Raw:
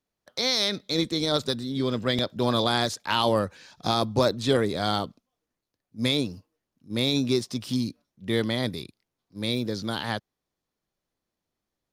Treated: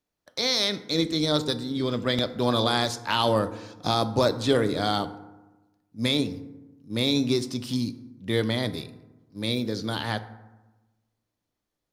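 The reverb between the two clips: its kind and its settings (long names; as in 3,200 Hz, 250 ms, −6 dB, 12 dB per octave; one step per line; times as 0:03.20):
feedback delay network reverb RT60 1.1 s, low-frequency decay 1.25×, high-frequency decay 0.45×, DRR 10.5 dB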